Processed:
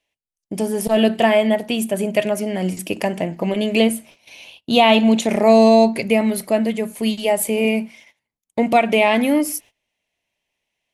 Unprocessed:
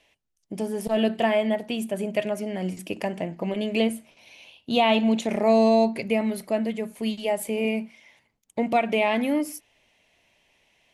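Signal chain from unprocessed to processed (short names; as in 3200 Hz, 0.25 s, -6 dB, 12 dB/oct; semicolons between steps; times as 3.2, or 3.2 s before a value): gate -51 dBFS, range -21 dB; high shelf 7000 Hz +7.5 dB; gain +7 dB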